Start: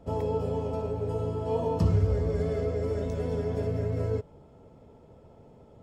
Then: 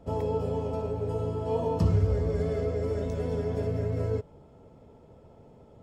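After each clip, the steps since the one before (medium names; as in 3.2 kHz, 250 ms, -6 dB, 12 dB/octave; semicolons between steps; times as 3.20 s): no audible change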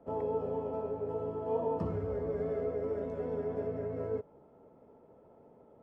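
three-band isolator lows -15 dB, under 200 Hz, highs -21 dB, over 2 kHz; trim -3 dB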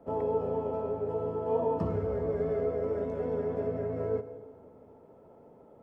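reverberation RT60 1.6 s, pre-delay 76 ms, DRR 13.5 dB; trim +3.5 dB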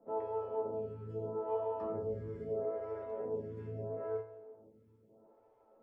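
feedback comb 110 Hz, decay 0.26 s, harmonics all, mix 90%; lamp-driven phase shifter 0.77 Hz; trim +1 dB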